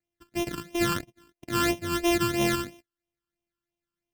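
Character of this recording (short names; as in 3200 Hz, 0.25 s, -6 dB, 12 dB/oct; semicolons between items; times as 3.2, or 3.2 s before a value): a buzz of ramps at a fixed pitch in blocks of 128 samples; phasing stages 12, 3 Hz, lowest notch 650–1500 Hz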